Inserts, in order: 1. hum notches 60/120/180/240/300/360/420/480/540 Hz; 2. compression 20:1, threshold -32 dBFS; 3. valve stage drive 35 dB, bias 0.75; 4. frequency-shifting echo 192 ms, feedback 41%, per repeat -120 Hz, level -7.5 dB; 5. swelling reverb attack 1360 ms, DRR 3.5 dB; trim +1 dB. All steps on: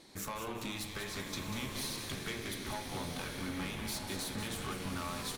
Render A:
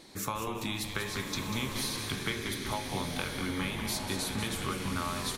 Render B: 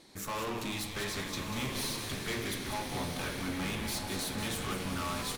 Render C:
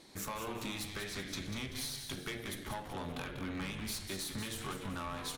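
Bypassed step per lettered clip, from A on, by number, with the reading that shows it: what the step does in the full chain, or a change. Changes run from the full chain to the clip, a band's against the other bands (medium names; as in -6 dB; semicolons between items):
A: 3, crest factor change +5.5 dB; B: 2, mean gain reduction 5.5 dB; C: 5, echo-to-direct -1.5 dB to -6.5 dB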